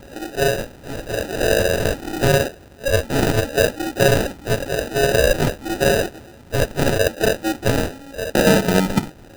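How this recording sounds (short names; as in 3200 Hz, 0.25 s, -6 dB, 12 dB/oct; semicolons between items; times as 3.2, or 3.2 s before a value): a buzz of ramps at a fixed pitch in blocks of 16 samples; phasing stages 6, 0.86 Hz, lowest notch 760–1900 Hz; aliases and images of a low sample rate 1100 Hz, jitter 0%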